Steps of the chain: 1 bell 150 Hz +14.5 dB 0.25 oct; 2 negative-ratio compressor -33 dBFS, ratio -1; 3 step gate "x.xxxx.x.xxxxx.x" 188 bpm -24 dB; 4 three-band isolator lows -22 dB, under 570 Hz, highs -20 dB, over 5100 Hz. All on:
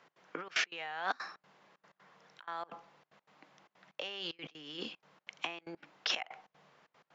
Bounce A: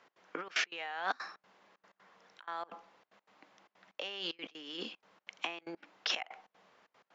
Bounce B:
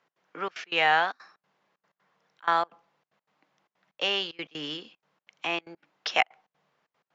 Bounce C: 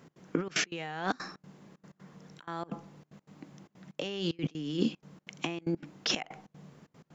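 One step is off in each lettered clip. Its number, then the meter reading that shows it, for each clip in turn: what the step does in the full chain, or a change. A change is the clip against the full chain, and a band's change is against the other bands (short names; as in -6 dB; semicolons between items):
1, 125 Hz band -4.5 dB; 2, crest factor change +2.0 dB; 4, crest factor change -3.0 dB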